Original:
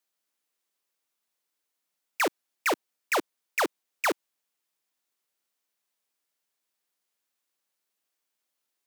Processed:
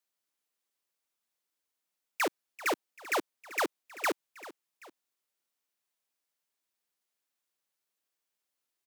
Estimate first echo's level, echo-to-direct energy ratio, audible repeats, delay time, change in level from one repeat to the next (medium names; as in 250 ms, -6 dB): -17.0 dB, -16.0 dB, 2, 389 ms, -6.0 dB